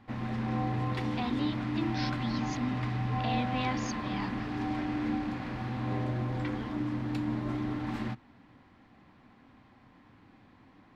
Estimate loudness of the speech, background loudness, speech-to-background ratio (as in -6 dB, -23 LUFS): -38.0 LUFS, -33.5 LUFS, -4.5 dB